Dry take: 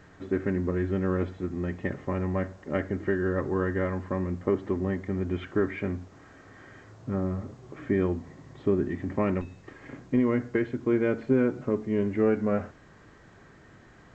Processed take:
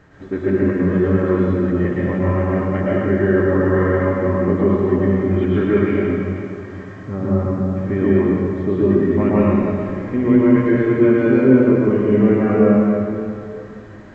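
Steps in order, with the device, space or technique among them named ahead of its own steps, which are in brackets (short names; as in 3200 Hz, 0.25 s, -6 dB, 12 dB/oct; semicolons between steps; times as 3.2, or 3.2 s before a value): swimming-pool hall (reverb RT60 2.5 s, pre-delay 0.105 s, DRR -7.5 dB; high shelf 3500 Hz -7 dB); gain +3 dB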